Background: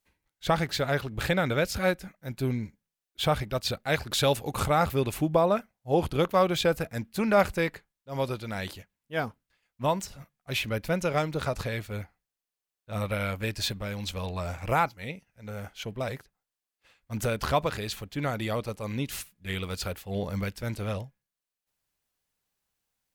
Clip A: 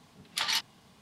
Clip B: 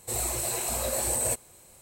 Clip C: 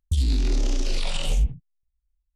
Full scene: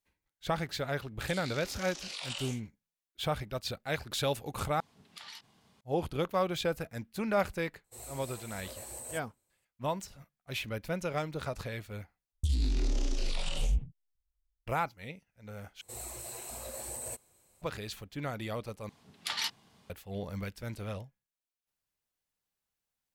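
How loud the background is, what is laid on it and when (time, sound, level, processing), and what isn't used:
background -7 dB
1.16 s: add C -6.5 dB + high-pass 920 Hz
4.80 s: replace with A -7 dB + compression 16:1, threshold -36 dBFS
7.84 s: add B -15.5 dB + upward expansion, over -47 dBFS
12.32 s: replace with C -7.5 dB
15.81 s: replace with B -13 dB
18.89 s: replace with A -4.5 dB

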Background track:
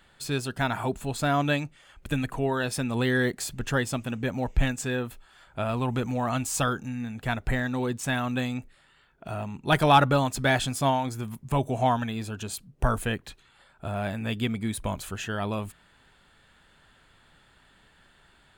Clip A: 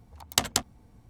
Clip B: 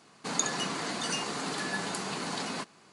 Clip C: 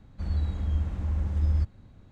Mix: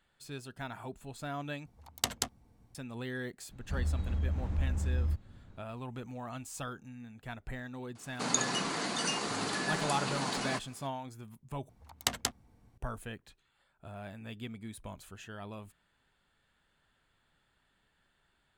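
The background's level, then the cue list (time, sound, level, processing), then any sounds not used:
background track -14.5 dB
1.66 s: replace with A -7.5 dB
3.51 s: add C -2.5 dB + peak limiter -22.5 dBFS
7.95 s: add B -0.5 dB
11.69 s: replace with A -7.5 dB + peaking EQ 1.8 kHz +3 dB 1.4 oct

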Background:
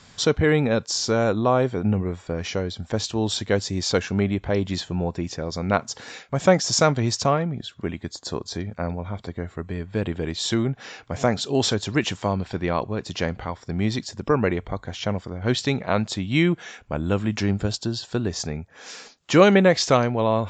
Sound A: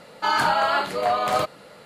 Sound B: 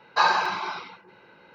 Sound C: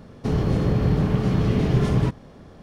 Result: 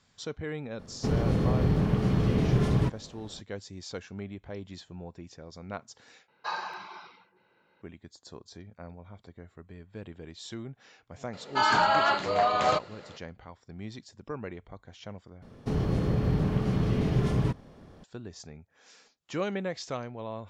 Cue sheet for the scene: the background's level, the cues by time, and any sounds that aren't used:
background -17 dB
0.79 s: add C -4.5 dB
6.28 s: replace with B -14 dB
11.33 s: add A -2.5 dB + resampled via 16 kHz
15.42 s: replace with C -6 dB

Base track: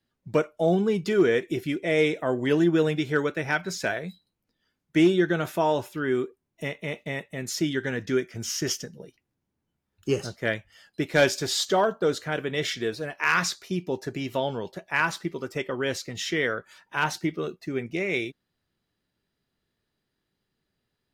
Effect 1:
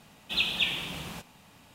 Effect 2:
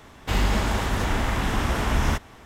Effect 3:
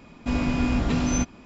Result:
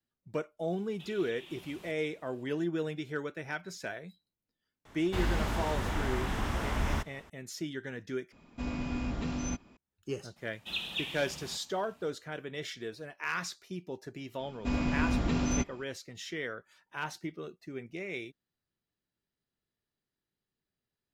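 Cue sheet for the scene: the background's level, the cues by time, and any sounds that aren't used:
base track -11.5 dB
0.70 s: add 1 -11.5 dB + compression 5:1, threshold -37 dBFS
4.85 s: add 2 -8.5 dB + slew-rate limiter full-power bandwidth 98 Hz
8.32 s: replace with 3 -11 dB
10.36 s: add 1 -8.5 dB
14.39 s: add 3 -6 dB

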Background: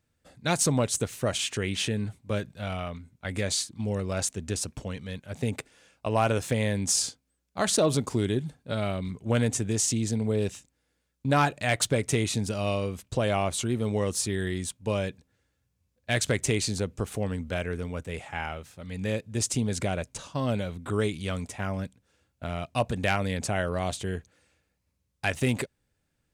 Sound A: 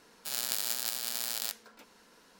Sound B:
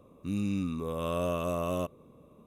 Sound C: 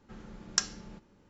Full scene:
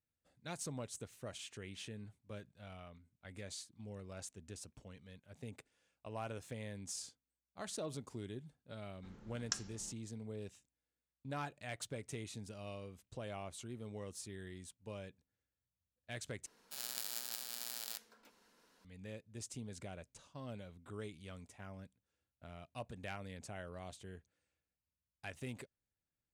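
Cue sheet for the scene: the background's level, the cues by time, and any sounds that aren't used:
background -19.5 dB
8.94 s: add C -11 dB
16.46 s: replace with A -10 dB
not used: B

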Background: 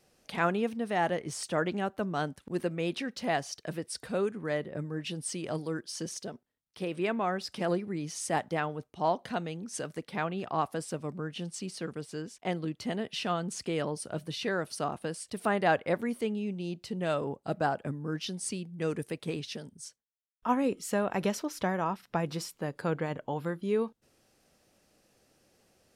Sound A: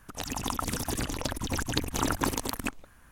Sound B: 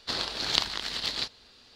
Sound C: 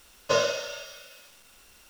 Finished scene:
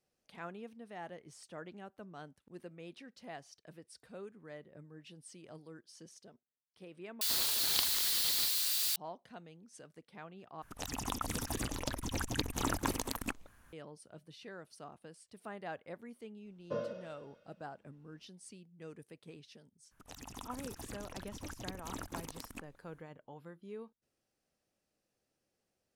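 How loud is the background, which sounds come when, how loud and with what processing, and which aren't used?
background -17.5 dB
7.21 s: replace with B -10 dB + zero-crossing glitches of -15 dBFS
10.62 s: replace with A -6 dB
16.41 s: add C -3.5 dB, fades 0.05 s + band-pass filter 210 Hz, Q 1.3
19.91 s: add A -15.5 dB

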